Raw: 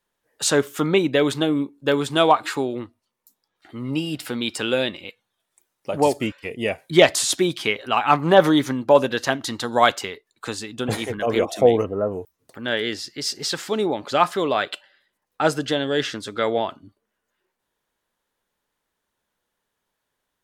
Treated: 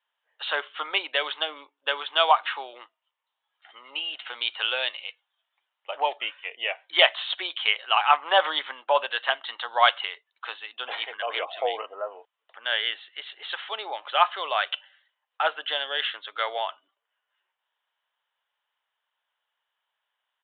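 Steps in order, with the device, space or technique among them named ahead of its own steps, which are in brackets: musical greeting card (resampled via 8 kHz; high-pass 720 Hz 24 dB/octave; peaking EQ 3 kHz +7.5 dB 0.2 oct); trim -1 dB

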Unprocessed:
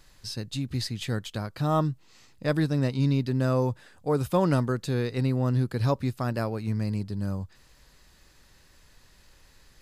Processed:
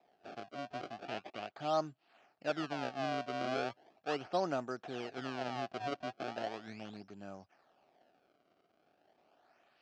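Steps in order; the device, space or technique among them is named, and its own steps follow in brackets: circuit-bent sampling toy (decimation with a swept rate 29×, swing 160% 0.38 Hz; cabinet simulation 410–4600 Hz, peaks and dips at 490 Hz -7 dB, 710 Hz +9 dB, 1 kHz -8 dB, 2 kHz -7 dB, 3.7 kHz -6 dB); 1.05–1.59 s: peaking EQ 2.6 kHz +6.5 dB 0.77 oct; trim -6 dB

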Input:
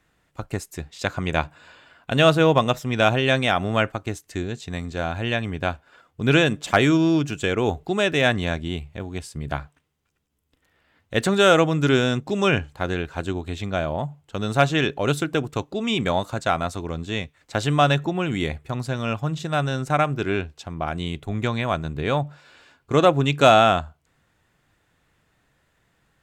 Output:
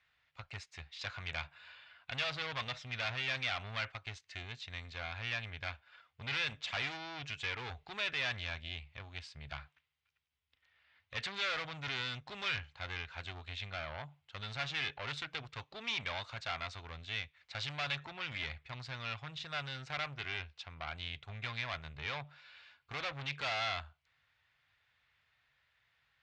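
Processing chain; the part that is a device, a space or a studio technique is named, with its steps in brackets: scooped metal amplifier (valve stage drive 25 dB, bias 0.45; cabinet simulation 84–4500 Hz, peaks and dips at 180 Hz -8 dB, 270 Hz +7 dB, 2.2 kHz +4 dB; amplifier tone stack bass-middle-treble 10-0-10)

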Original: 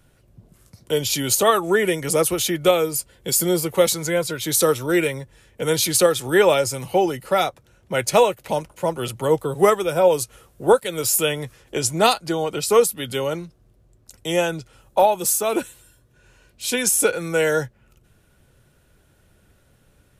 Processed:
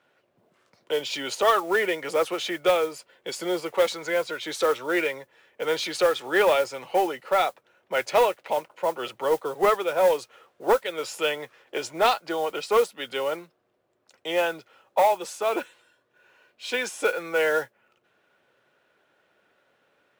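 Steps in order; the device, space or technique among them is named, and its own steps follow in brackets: carbon microphone (band-pass 500–3000 Hz; saturation -12 dBFS, distortion -17 dB; modulation noise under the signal 22 dB)

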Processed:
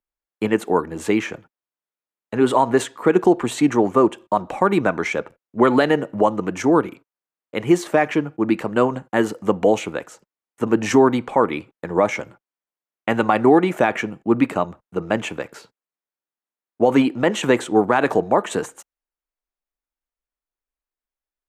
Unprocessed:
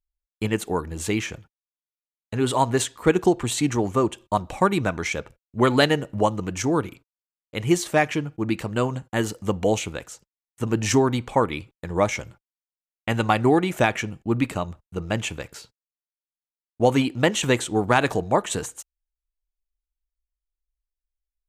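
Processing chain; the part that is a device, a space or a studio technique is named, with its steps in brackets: DJ mixer with the lows and highs turned down (three-band isolator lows -20 dB, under 180 Hz, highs -12 dB, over 2.1 kHz; peak limiter -12 dBFS, peak gain reduction 7 dB); trim +7.5 dB

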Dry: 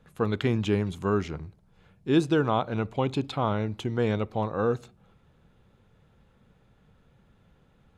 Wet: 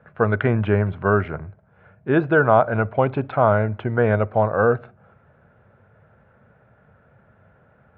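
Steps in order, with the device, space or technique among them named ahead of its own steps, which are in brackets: bass cabinet (cabinet simulation 90–2200 Hz, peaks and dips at 100 Hz +5 dB, 180 Hz -4 dB, 300 Hz -7 dB, 630 Hz +10 dB, 1.5 kHz +9 dB); trim +6.5 dB

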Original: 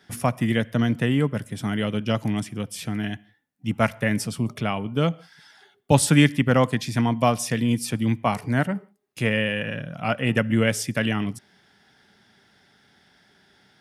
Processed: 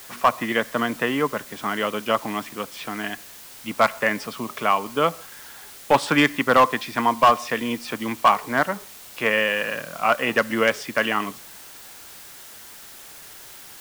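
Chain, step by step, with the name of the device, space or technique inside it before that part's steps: drive-through speaker (band-pass 400–3300 Hz; peaking EQ 1.1 kHz +10 dB 0.47 oct; hard clipper -13 dBFS, distortion -14 dB; white noise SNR 19 dB); trim +4.5 dB

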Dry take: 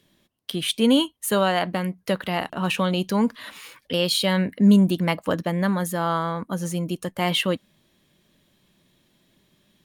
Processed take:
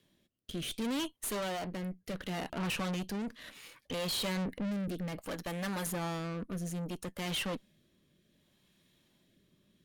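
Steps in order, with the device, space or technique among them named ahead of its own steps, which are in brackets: 5.18–5.87 s: tilt EQ +2.5 dB/octave; overdriven rotary cabinet (valve stage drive 32 dB, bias 0.75; rotary cabinet horn 0.65 Hz)

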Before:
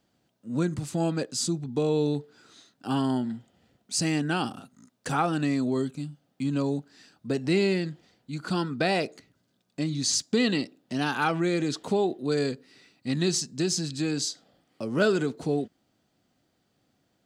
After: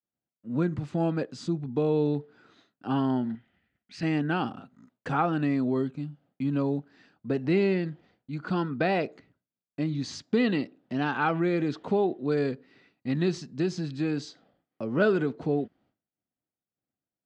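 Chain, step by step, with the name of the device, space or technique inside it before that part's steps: hearing-loss simulation (low-pass 2.4 kHz 12 dB/octave; expander -57 dBFS); 3.35–4.03 s: graphic EQ 125/250/500/1000/2000/8000 Hz -7/-3/-10/-7/+10/-9 dB

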